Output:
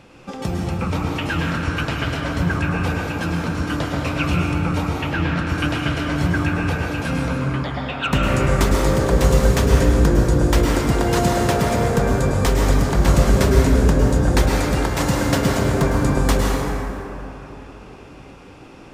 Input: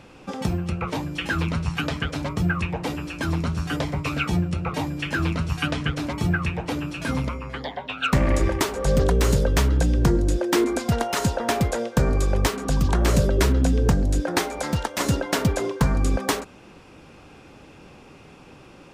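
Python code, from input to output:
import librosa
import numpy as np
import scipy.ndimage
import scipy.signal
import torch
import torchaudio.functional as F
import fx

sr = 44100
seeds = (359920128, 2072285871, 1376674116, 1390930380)

y = fx.lowpass(x, sr, hz=4300.0, slope=12, at=(4.9, 5.37))
y = fx.rev_plate(y, sr, seeds[0], rt60_s=3.5, hf_ratio=0.4, predelay_ms=95, drr_db=-2.5)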